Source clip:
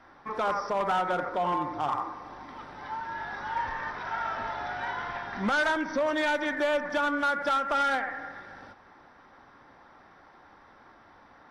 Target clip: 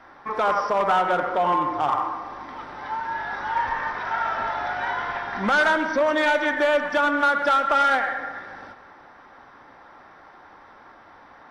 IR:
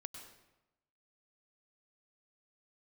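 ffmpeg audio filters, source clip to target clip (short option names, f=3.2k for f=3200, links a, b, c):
-filter_complex "[0:a]asplit=2[a][b];[b]bass=f=250:g=-12,treble=f=4k:g=-8[c];[1:a]atrim=start_sample=2205[d];[c][d]afir=irnorm=-1:irlink=0,volume=6.5dB[e];[a][e]amix=inputs=2:normalize=0"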